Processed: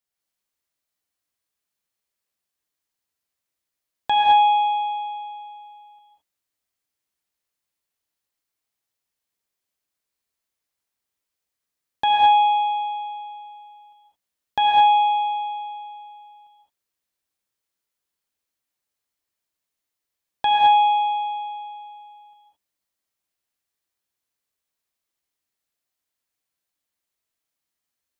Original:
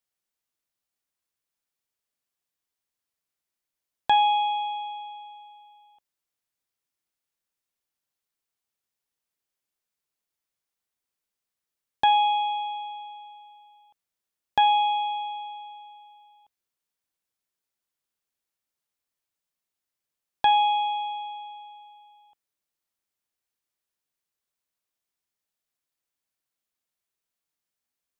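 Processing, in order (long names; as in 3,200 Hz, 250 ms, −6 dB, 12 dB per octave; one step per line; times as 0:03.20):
reverb whose tail is shaped and stops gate 240 ms rising, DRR −2 dB
level −1 dB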